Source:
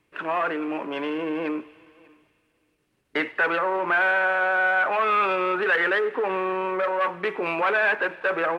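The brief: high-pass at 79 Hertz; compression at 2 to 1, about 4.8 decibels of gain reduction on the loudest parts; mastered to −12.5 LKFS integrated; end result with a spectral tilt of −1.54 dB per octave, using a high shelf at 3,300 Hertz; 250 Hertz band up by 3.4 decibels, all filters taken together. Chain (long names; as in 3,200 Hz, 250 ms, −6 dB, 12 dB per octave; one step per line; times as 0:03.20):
high-pass filter 79 Hz
parametric band 250 Hz +5 dB
high-shelf EQ 3,300 Hz +7 dB
downward compressor 2 to 1, threshold −26 dBFS
level +13.5 dB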